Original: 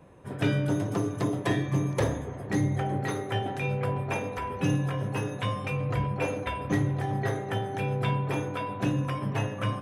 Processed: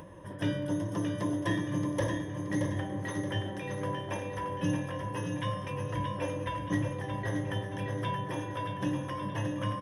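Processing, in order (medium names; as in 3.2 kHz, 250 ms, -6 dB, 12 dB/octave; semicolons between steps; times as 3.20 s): rippled EQ curve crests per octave 1.2, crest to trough 11 dB; upward compressor, threshold -32 dBFS; on a send: feedback delay 625 ms, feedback 44%, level -6 dB; on the sum: trim -7 dB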